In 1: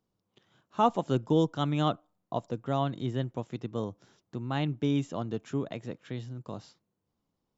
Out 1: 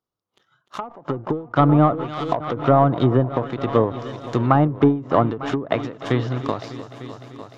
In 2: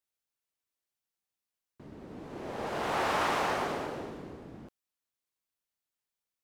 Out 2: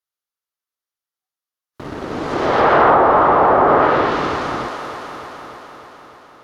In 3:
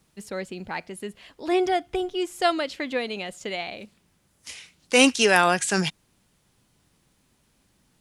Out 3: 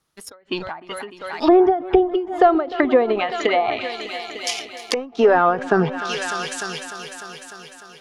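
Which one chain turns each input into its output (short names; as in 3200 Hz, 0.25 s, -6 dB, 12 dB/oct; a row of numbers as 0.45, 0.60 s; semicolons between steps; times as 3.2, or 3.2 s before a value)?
in parallel at -5 dB: one-sided clip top -17 dBFS, bottom -5 dBFS; on the sum: thirty-one-band EQ 200 Hz -7 dB, 1250 Hz +6 dB, 2500 Hz -5 dB, 8000 Hz -7 dB; sample leveller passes 2; spectral noise reduction 13 dB; compressor 5:1, threshold -15 dBFS; multi-head echo 0.3 s, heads all three, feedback 44%, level -20 dB; treble ducked by the level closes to 810 Hz, closed at -17 dBFS; low shelf 410 Hz -7 dB; ending taper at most 140 dB/s; normalise peaks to -2 dBFS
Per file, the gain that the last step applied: +10.5, +13.5, +9.0 dB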